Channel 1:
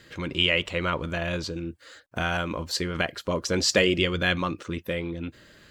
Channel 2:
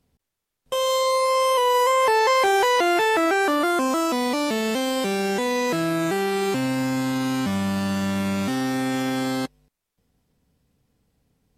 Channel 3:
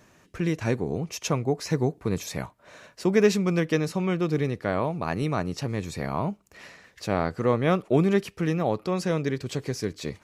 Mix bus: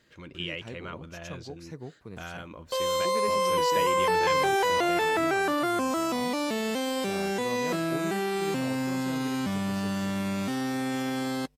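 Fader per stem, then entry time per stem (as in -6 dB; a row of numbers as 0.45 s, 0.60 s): -13.0 dB, -5.5 dB, -16.5 dB; 0.00 s, 2.00 s, 0.00 s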